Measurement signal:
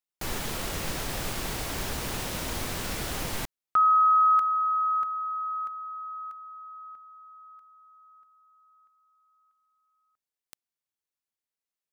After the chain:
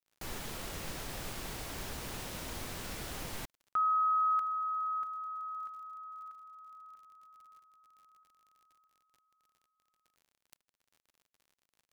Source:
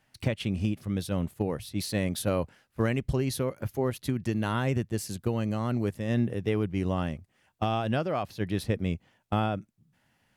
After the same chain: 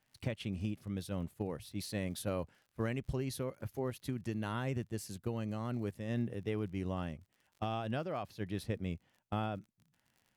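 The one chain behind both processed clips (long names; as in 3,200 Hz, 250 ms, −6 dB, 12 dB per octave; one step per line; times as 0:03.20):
surface crackle 47 per second −44 dBFS
level −9 dB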